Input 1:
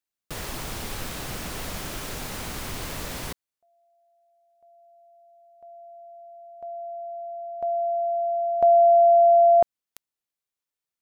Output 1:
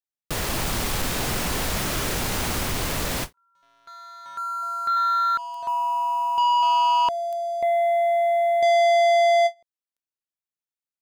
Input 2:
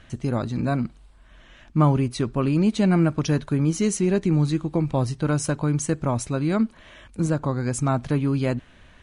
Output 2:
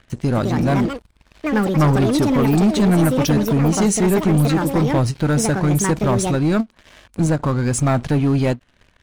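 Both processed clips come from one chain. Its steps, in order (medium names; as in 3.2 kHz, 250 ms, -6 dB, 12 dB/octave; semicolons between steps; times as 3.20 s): ever faster or slower copies 280 ms, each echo +6 st, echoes 2, each echo -6 dB; waveshaping leveller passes 3; endings held to a fixed fall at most 460 dB/s; trim -3.5 dB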